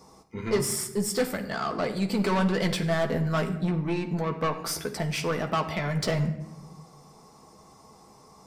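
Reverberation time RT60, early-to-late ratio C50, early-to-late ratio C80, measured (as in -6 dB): 0.95 s, 10.5 dB, 13.0 dB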